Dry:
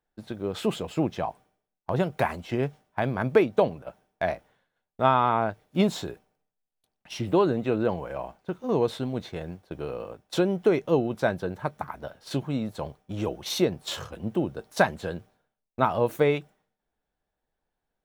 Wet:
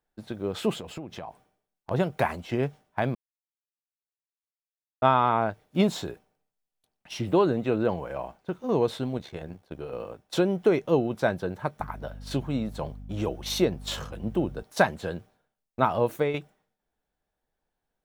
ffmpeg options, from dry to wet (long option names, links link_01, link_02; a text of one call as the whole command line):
ffmpeg -i in.wav -filter_complex "[0:a]asettb=1/sr,asplit=3[link_01][link_02][link_03];[link_01]atrim=end=0.724[link_04];[link_02]atrim=start=0.72:end=1.91,asetpts=PTS-STARTPTS,afade=type=in:duration=0.004:curve=qsin,afade=type=out:start_time=1.186:duration=0.004:curve=qsin,acompressor=threshold=-33dB:ratio=12:attack=3.2:release=140:knee=1:detection=peak[link_05];[link_03]atrim=start=1.906[link_06];[link_04][link_05]acrossfade=duration=0.004:curve1=hsin:curve2=qsin[link_07];[link_07][link_06]acrossfade=duration=0.004:curve1=qsin:curve2=hsin,asettb=1/sr,asplit=3[link_08][link_09][link_10];[link_08]atrim=end=9.174[link_11];[link_09]atrim=start=9.17:end=9.93,asetpts=PTS-STARTPTS,afade=type=in:duration=0.004:curve=qsin,afade=type=out:start_time=0.756:duration=0.004:curve=qsin,tremolo=f=69:d=0.667[link_12];[link_10]atrim=start=9.926[link_13];[link_11][link_12]acrossfade=duration=0.004:curve1=hsin:curve2=qsin[link_14];[link_14][link_13]acrossfade=duration=0.004:curve1=qsin:curve2=hsin,asettb=1/sr,asplit=3[link_15][link_16][link_17];[link_15]atrim=end=11.804[link_18];[link_16]atrim=start=11.8:end=14.63,asetpts=PTS-STARTPTS,afade=type=in:duration=0.004:curve=qsin,afade=type=out:start_time=2.826:duration=0.004:curve=qsin,aeval=exprs='val(0)+0.01*(sin(2*PI*50*n/s)+sin(2*PI*2*50*n/s)/2+sin(2*PI*3*50*n/s)/3+sin(2*PI*4*50*n/s)/4+sin(2*PI*5*50*n/s)/5)':channel_layout=same[link_19];[link_17]atrim=start=14.626[link_20];[link_18][link_19]acrossfade=duration=0.004:curve1=hsin:curve2=qsin[link_21];[link_21][link_20]acrossfade=duration=0.004:curve1=qsin:curve2=hsin,asplit=4[link_22][link_23][link_24][link_25];[link_22]atrim=end=3.15,asetpts=PTS-STARTPTS,afade=type=out:start_time=3.146:duration=0.004:curve=hsin[link_26];[link_23]atrim=start=3.15:end=5.02,asetpts=PTS-STARTPTS,volume=0[link_27];[link_24]atrim=start=5.02:end=16.34,asetpts=PTS-STARTPTS,afade=type=in:duration=0.004:curve=hsin,afade=type=out:start_time=10.92:duration=0.4:curve=qsin:silence=0.398107[link_28];[link_25]atrim=start=16.34,asetpts=PTS-STARTPTS,afade=type=in:duration=0.004:curve=hsin:silence=0.398107[link_29];[link_26][link_27][link_28][link_29]concat=n=4:v=0:a=1" out.wav